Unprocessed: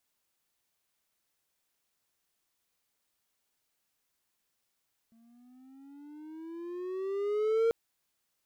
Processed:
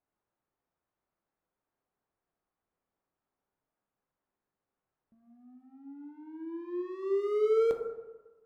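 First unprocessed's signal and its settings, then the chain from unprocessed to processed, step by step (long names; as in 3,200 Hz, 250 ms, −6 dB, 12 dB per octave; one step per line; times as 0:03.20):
pitch glide with a swell triangle, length 2.59 s, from 225 Hz, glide +12.5 semitones, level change +37 dB, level −20.5 dB
low-pass that shuts in the quiet parts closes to 1,100 Hz, open at −29.5 dBFS
dense smooth reverb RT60 1.2 s, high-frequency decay 0.3×, pre-delay 0 ms, DRR 3 dB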